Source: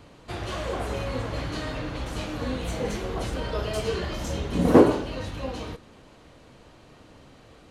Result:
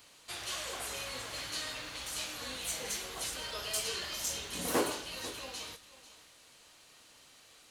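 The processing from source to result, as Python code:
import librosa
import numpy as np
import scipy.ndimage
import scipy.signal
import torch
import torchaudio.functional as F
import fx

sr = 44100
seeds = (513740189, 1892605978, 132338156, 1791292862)

p1 = librosa.effects.preemphasis(x, coef=0.97, zi=[0.0])
p2 = p1 + fx.echo_single(p1, sr, ms=492, db=-16.0, dry=0)
y = p2 * 10.0 ** (7.0 / 20.0)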